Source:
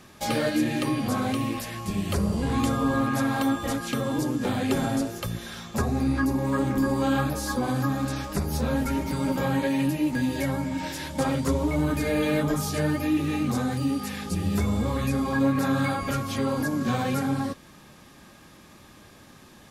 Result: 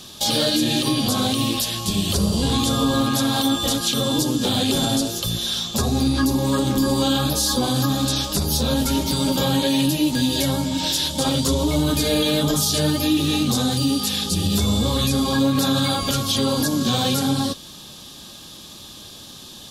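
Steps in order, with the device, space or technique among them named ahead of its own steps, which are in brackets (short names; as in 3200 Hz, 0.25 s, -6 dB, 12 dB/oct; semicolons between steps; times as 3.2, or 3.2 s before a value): over-bright horn tweeter (resonant high shelf 2700 Hz +8.5 dB, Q 3; limiter -16 dBFS, peak gain reduction 8.5 dB); gain +5.5 dB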